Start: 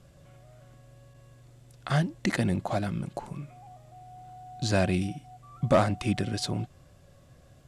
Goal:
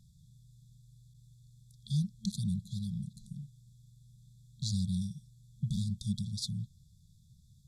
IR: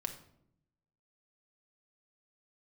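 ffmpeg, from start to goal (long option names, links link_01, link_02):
-af "afftfilt=real='re*(1-between(b*sr/4096,220,3300))':imag='im*(1-between(b*sr/4096,220,3300))':win_size=4096:overlap=0.75,volume=-4.5dB"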